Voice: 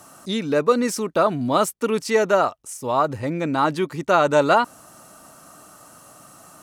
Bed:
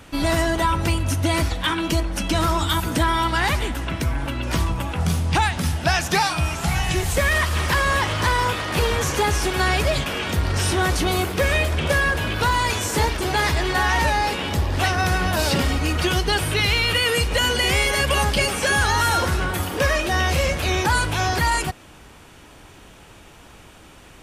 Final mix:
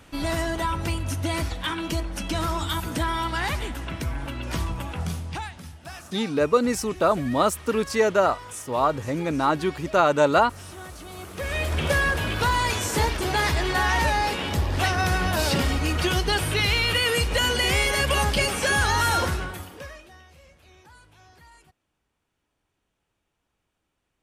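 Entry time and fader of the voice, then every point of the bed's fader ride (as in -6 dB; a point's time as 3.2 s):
5.85 s, -2.0 dB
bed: 4.97 s -6 dB
5.77 s -20.5 dB
11.08 s -20.5 dB
11.75 s -2.5 dB
19.25 s -2.5 dB
20.28 s -32 dB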